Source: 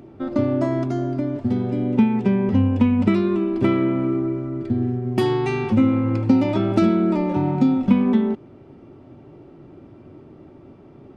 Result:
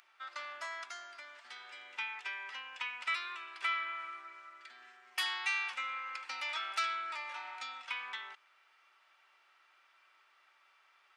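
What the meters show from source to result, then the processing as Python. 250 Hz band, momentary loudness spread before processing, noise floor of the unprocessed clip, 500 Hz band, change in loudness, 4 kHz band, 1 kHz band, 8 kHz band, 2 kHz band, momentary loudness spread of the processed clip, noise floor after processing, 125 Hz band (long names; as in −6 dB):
below −40 dB, 6 LU, −46 dBFS, −35.0 dB, −18.0 dB, 0.0 dB, −9.5 dB, can't be measured, −0.5 dB, 16 LU, −69 dBFS, below −40 dB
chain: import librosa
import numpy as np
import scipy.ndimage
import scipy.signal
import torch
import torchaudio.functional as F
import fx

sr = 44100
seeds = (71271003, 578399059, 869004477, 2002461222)

y = scipy.signal.sosfilt(scipy.signal.butter(4, 1400.0, 'highpass', fs=sr, output='sos'), x)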